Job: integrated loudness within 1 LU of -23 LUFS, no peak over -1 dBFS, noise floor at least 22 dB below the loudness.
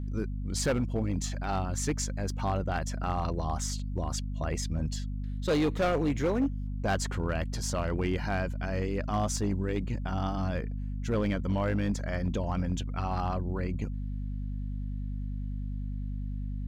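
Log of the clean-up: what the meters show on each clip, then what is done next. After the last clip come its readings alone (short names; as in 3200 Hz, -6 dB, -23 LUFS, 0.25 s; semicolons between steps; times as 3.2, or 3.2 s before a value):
clipped 1.4%; flat tops at -22.0 dBFS; hum 50 Hz; harmonics up to 250 Hz; hum level -32 dBFS; loudness -32.0 LUFS; peak -22.0 dBFS; loudness target -23.0 LUFS
-> clip repair -22 dBFS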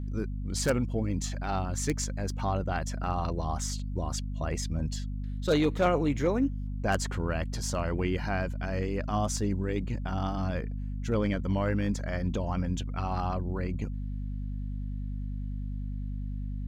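clipped 0.0%; hum 50 Hz; harmonics up to 250 Hz; hum level -32 dBFS
-> de-hum 50 Hz, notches 5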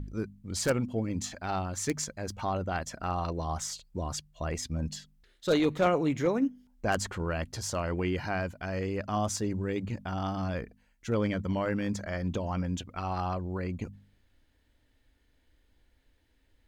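hum none; loudness -32.0 LUFS; peak -13.5 dBFS; loudness target -23.0 LUFS
-> gain +9 dB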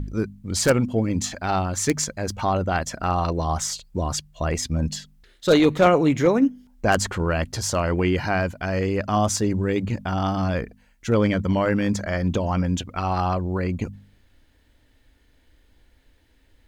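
loudness -23.0 LUFS; peak -4.5 dBFS; noise floor -60 dBFS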